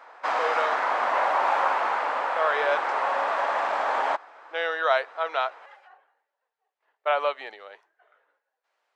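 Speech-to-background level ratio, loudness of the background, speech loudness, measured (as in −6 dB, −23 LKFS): −2.5 dB, −25.5 LKFS, −28.0 LKFS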